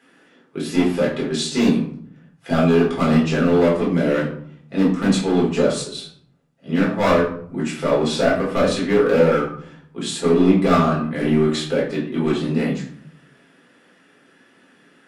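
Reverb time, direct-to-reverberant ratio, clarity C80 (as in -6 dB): 0.60 s, -6.5 dB, 9.5 dB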